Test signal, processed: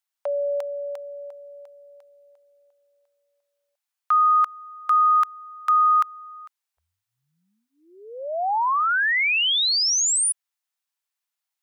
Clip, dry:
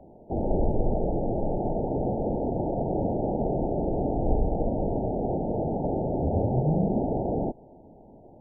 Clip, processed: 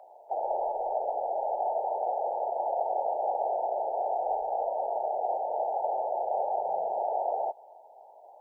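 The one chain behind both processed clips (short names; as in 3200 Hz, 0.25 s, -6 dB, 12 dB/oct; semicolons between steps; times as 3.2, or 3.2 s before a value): inverse Chebyshev high-pass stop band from 280 Hz, stop band 50 dB; gain +8.5 dB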